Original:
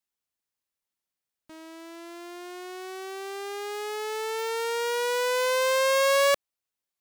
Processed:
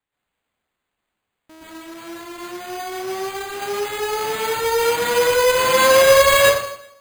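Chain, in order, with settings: plate-style reverb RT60 0.8 s, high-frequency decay 0.85×, pre-delay 110 ms, DRR -7.5 dB; sample-and-hold 8×; trim +1.5 dB

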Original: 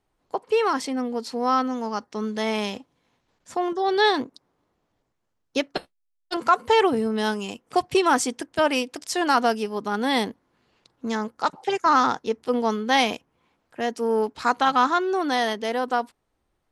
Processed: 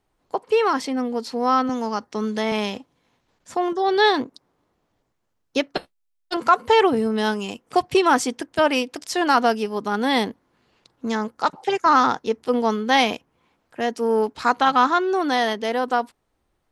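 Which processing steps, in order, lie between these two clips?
dynamic bell 8.6 kHz, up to -5 dB, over -45 dBFS, Q 1.1; 1.69–2.52 s: three bands compressed up and down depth 40%; trim +2.5 dB

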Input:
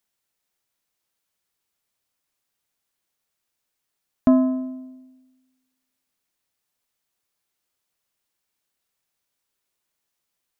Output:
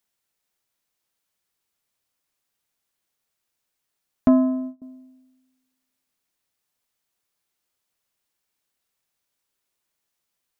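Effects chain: 4.28–4.82 s: gate -31 dBFS, range -26 dB

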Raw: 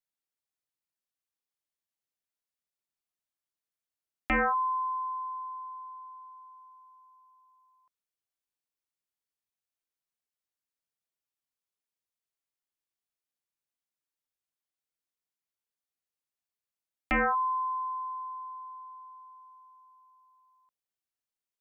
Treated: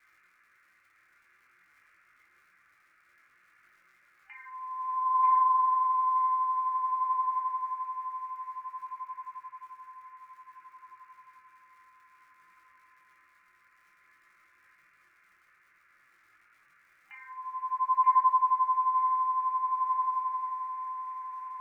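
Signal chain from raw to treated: comb of notches 1.3 kHz; compressor with a negative ratio -37 dBFS, ratio -0.5; band noise 1.2–2.3 kHz -72 dBFS; FFT band-pass 780–3000 Hz; crackle 140 per s -62 dBFS; filtered feedback delay 932 ms, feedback 63%, low-pass 1.4 kHz, level -3 dB; on a send at -1.5 dB: reverberation RT60 0.70 s, pre-delay 3 ms; on the sum: detune thickener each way 19 cents; trim +8 dB

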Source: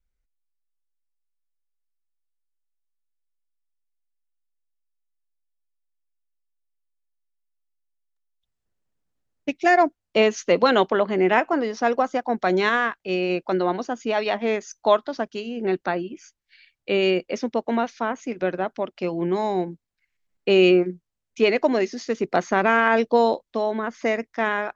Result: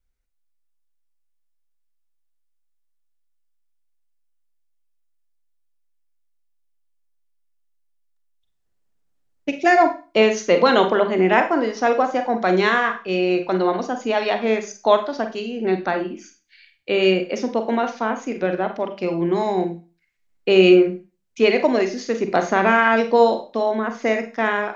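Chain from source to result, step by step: hum notches 50/100/150/200 Hz; Schroeder reverb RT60 0.33 s, combs from 32 ms, DRR 6.5 dB; trim +2 dB

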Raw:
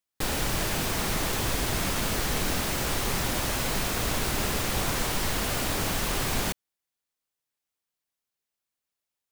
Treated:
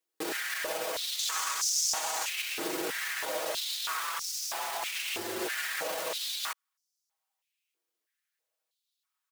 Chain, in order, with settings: comb 6.3 ms, depth 98%; 3.99–5.45 s: frequency shift -110 Hz; peak limiter -23 dBFS, peak gain reduction 11 dB; 1.19–2.29 s: peaking EQ 6.7 kHz +10 dB 0.83 oct; step-sequenced high-pass 3.1 Hz 370–5500 Hz; trim -2.5 dB

